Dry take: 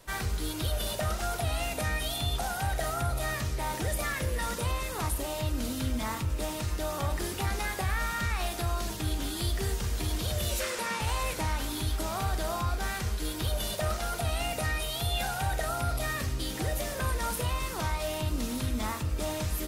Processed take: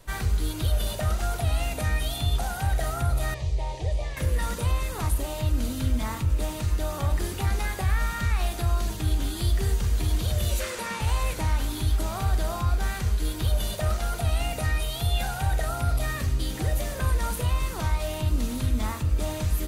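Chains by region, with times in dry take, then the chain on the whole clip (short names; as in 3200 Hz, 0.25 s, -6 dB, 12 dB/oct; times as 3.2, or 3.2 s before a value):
3.34–4.17 delta modulation 64 kbps, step -45 dBFS + LPF 5400 Hz + fixed phaser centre 590 Hz, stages 4
whole clip: low shelf 130 Hz +9.5 dB; notch 5300 Hz, Q 17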